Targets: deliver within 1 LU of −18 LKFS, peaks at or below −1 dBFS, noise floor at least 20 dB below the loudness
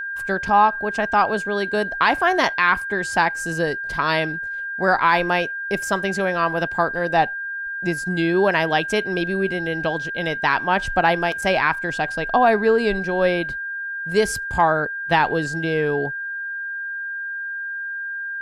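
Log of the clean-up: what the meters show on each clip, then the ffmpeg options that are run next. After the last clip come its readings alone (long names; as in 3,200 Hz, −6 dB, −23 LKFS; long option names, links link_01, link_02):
interfering tone 1,600 Hz; level of the tone −26 dBFS; integrated loudness −21.0 LKFS; sample peak −5.0 dBFS; target loudness −18.0 LKFS
→ -af "bandreject=frequency=1600:width=30"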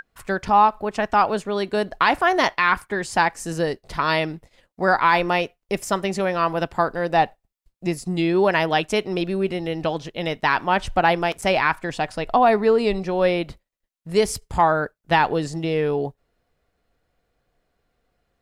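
interfering tone none found; integrated loudness −21.5 LKFS; sample peak −5.5 dBFS; target loudness −18.0 LKFS
→ -af "volume=3.5dB"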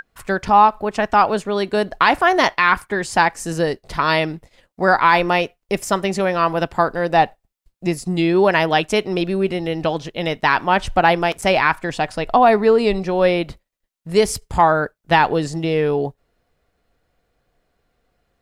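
integrated loudness −18.0 LKFS; sample peak −2.0 dBFS; background noise floor −74 dBFS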